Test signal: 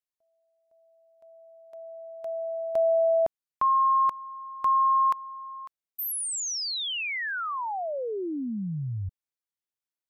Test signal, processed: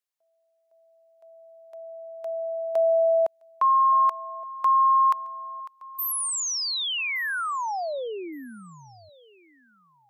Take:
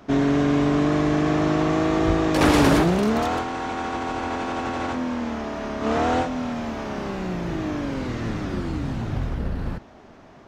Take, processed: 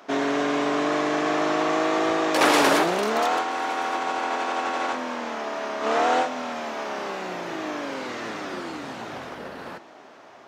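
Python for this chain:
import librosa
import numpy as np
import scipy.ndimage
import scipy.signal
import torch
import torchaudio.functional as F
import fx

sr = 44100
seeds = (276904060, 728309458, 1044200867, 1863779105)

y = scipy.signal.sosfilt(scipy.signal.butter(2, 490.0, 'highpass', fs=sr, output='sos'), x)
y = fx.echo_feedback(y, sr, ms=1169, feedback_pct=28, wet_db=-23)
y = y * 10.0 ** (3.0 / 20.0)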